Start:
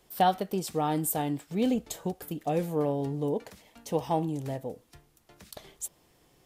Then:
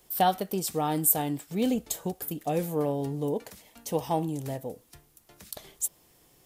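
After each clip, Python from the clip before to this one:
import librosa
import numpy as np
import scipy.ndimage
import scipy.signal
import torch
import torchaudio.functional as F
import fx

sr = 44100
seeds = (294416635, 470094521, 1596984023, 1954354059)

y = fx.high_shelf(x, sr, hz=7400.0, db=11.5)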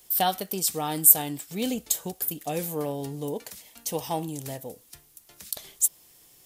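y = fx.high_shelf(x, sr, hz=2100.0, db=11.0)
y = y * librosa.db_to_amplitude(-3.0)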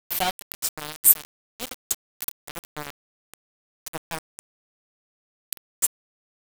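y = np.where(np.abs(x) >= 10.0 ** (-21.5 / 20.0), x, 0.0)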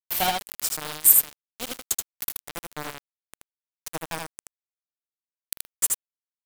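y = x + 10.0 ** (-3.5 / 20.0) * np.pad(x, (int(78 * sr / 1000.0), 0))[:len(x)]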